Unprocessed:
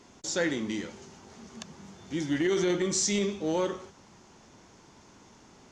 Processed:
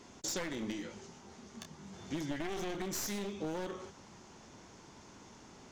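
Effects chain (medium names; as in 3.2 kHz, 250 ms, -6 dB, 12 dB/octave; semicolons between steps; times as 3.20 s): one-sided wavefolder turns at -29 dBFS; compression 10:1, threshold -34 dBFS, peak gain reduction 10.5 dB; 0.72–1.92 s: detune thickener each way 36 cents -> 22 cents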